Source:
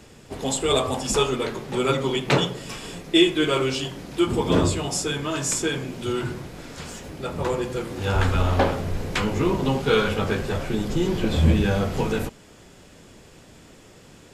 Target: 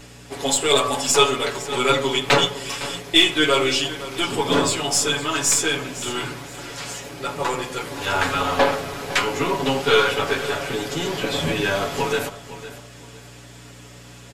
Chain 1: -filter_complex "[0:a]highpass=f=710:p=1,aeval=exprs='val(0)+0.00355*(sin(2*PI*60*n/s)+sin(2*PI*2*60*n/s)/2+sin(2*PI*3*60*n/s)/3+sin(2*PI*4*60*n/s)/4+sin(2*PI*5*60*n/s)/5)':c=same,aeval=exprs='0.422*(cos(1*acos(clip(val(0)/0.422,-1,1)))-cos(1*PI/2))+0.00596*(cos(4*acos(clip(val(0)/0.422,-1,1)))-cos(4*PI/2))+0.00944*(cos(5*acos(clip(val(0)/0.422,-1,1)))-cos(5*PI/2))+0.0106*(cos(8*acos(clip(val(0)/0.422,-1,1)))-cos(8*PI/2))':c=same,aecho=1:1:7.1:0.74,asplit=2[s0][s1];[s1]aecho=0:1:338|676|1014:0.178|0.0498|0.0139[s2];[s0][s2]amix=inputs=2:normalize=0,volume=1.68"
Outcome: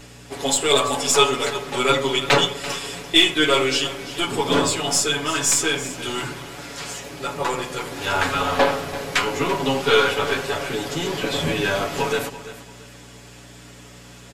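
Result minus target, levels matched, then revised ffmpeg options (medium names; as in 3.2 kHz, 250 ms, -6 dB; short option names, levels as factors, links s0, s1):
echo 171 ms early
-filter_complex "[0:a]highpass=f=710:p=1,aeval=exprs='val(0)+0.00355*(sin(2*PI*60*n/s)+sin(2*PI*2*60*n/s)/2+sin(2*PI*3*60*n/s)/3+sin(2*PI*4*60*n/s)/4+sin(2*PI*5*60*n/s)/5)':c=same,aeval=exprs='0.422*(cos(1*acos(clip(val(0)/0.422,-1,1)))-cos(1*PI/2))+0.00596*(cos(4*acos(clip(val(0)/0.422,-1,1)))-cos(4*PI/2))+0.00944*(cos(5*acos(clip(val(0)/0.422,-1,1)))-cos(5*PI/2))+0.0106*(cos(8*acos(clip(val(0)/0.422,-1,1)))-cos(8*PI/2))':c=same,aecho=1:1:7.1:0.74,asplit=2[s0][s1];[s1]aecho=0:1:509|1018|1527:0.178|0.0498|0.0139[s2];[s0][s2]amix=inputs=2:normalize=0,volume=1.68"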